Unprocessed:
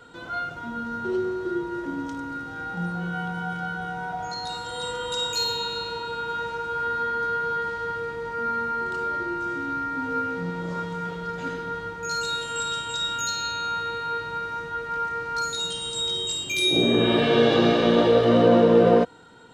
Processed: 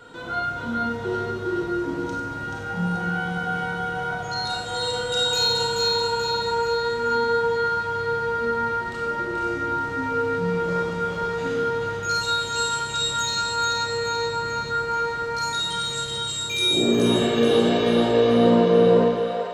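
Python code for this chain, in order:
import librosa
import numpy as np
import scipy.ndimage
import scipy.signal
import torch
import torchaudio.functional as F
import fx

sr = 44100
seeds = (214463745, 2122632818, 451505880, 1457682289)

y = fx.rider(x, sr, range_db=4, speed_s=2.0)
y = fx.echo_split(y, sr, split_hz=490.0, low_ms=117, high_ms=432, feedback_pct=52, wet_db=-4)
y = fx.rev_schroeder(y, sr, rt60_s=0.64, comb_ms=30, drr_db=0.5)
y = y * librosa.db_to_amplitude(-2.0)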